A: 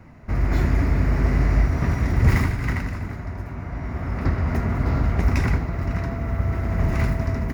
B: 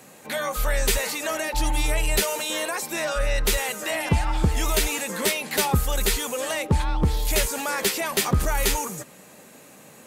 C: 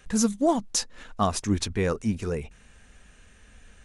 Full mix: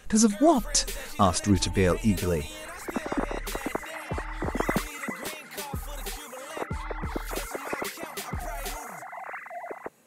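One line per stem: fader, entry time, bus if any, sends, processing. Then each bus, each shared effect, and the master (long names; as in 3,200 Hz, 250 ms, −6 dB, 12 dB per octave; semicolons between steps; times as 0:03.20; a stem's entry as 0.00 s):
−13.5 dB, 2.35 s, no send, three sine waves on the formant tracks; low-pass filter 1,300 Hz 6 dB per octave
−13.5 dB, 0.00 s, no send, no processing
+2.5 dB, 0.00 s, no send, no processing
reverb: not used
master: no processing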